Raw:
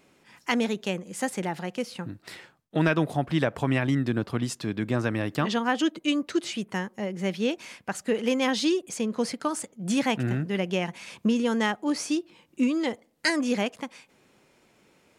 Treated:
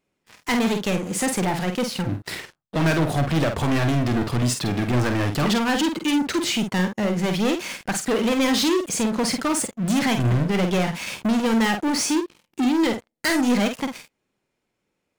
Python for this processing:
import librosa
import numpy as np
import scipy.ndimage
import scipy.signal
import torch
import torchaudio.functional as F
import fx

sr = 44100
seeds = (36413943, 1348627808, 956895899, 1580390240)

y = fx.low_shelf(x, sr, hz=67.0, db=10.0)
y = fx.leveller(y, sr, passes=5)
y = fx.doubler(y, sr, ms=49.0, db=-6.5)
y = y * librosa.db_to_amplitude(-7.0)